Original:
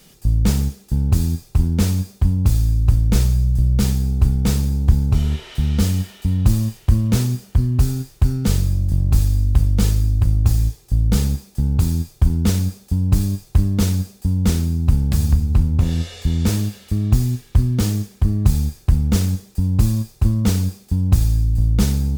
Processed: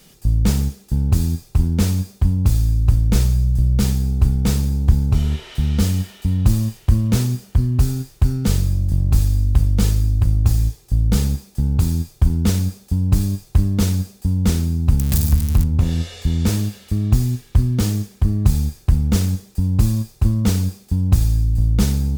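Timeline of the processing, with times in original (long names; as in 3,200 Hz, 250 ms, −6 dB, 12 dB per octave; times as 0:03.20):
0:14.99–0:15.64: spike at every zero crossing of −14.5 dBFS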